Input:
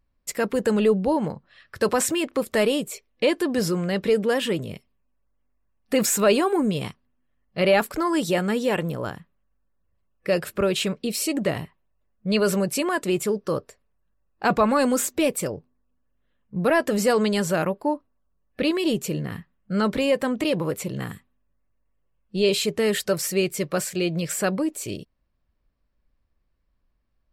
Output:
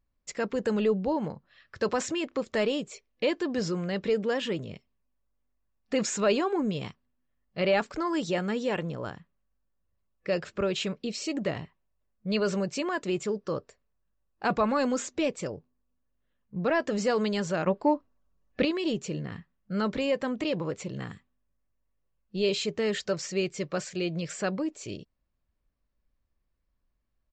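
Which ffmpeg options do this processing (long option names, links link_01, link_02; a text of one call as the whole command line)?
ffmpeg -i in.wav -filter_complex "[0:a]asettb=1/sr,asplit=3[link_01][link_02][link_03];[link_01]atrim=end=17.674[link_04];[link_02]atrim=start=17.67:end=18.65,asetpts=PTS-STARTPTS,afade=type=in:duration=0.004:curve=qsin,afade=type=out:start_time=0.976:duration=0.004:curve=qsin,acontrast=65[link_05];[link_03]atrim=start=18.646[link_06];[link_04][link_05]acrossfade=duration=0.004:curve1=hsin:curve2=qsin[link_07];[link_07][link_06]acrossfade=duration=0.004:curve1=qsin:curve2=hsin,aresample=16000,aresample=44100,volume=-6dB" out.wav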